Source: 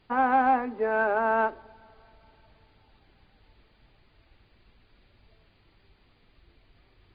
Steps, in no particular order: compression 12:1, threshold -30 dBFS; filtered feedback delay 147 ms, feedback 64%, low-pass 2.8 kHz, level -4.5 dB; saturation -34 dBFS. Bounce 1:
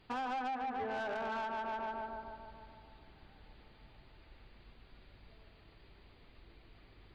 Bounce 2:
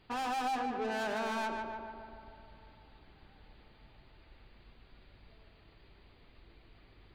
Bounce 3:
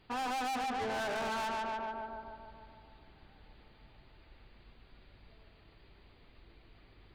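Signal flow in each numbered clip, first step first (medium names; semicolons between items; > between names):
filtered feedback delay > compression > saturation; saturation > filtered feedback delay > compression; filtered feedback delay > saturation > compression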